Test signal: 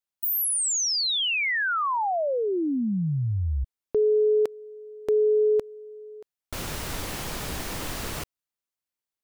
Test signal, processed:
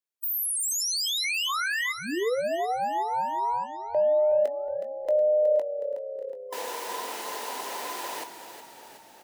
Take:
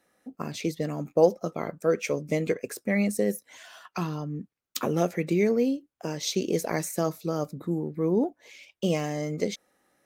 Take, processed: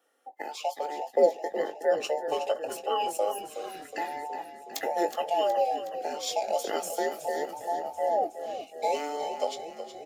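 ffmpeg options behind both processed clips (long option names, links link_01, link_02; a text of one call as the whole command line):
ffmpeg -i in.wav -filter_complex "[0:a]afftfilt=real='real(if(between(b,1,1008),(2*floor((b-1)/48)+1)*48-b,b),0)':imag='imag(if(between(b,1,1008),(2*floor((b-1)/48)+1)*48-b,b),0)*if(between(b,1,1008),-1,1)':win_size=2048:overlap=0.75,highpass=frequency=270:width=0.5412,highpass=frequency=270:width=1.3066,equalizer=frequency=470:width_type=o:width=0.37:gain=3.5,asplit=2[link_01][link_02];[link_02]adelay=20,volume=-10.5dB[link_03];[link_01][link_03]amix=inputs=2:normalize=0,asplit=9[link_04][link_05][link_06][link_07][link_08][link_09][link_10][link_11][link_12];[link_05]adelay=368,afreqshift=-33,volume=-10.5dB[link_13];[link_06]adelay=736,afreqshift=-66,volume=-14.7dB[link_14];[link_07]adelay=1104,afreqshift=-99,volume=-18.8dB[link_15];[link_08]adelay=1472,afreqshift=-132,volume=-23dB[link_16];[link_09]adelay=1840,afreqshift=-165,volume=-27.1dB[link_17];[link_10]adelay=2208,afreqshift=-198,volume=-31.3dB[link_18];[link_11]adelay=2576,afreqshift=-231,volume=-35.4dB[link_19];[link_12]adelay=2944,afreqshift=-264,volume=-39.6dB[link_20];[link_04][link_13][link_14][link_15][link_16][link_17][link_18][link_19][link_20]amix=inputs=9:normalize=0,volume=-3.5dB" out.wav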